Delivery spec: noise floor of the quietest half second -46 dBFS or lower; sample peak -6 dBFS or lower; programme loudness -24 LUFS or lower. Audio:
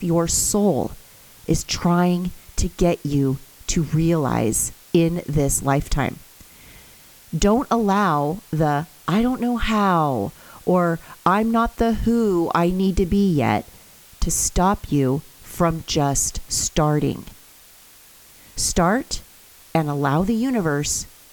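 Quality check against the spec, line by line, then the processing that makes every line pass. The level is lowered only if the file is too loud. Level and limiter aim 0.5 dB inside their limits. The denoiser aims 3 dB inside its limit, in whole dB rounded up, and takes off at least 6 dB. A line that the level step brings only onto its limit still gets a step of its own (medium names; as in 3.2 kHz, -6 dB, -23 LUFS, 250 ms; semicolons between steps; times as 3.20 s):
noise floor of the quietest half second -48 dBFS: pass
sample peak -4.0 dBFS: fail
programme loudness -21.0 LUFS: fail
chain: trim -3.5 dB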